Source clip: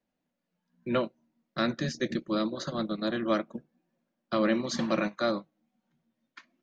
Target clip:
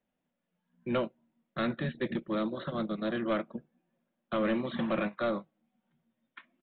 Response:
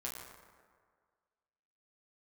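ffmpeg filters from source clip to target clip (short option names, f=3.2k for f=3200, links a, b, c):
-af "aresample=8000,asoftclip=type=tanh:threshold=-22dB,aresample=44100,equalizer=f=300:w=7.5:g=-5"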